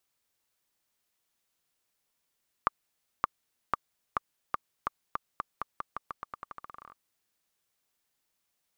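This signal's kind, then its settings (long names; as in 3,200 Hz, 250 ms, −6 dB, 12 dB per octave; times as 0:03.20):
bouncing ball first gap 0.57 s, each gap 0.87, 1,180 Hz, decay 19 ms −9.5 dBFS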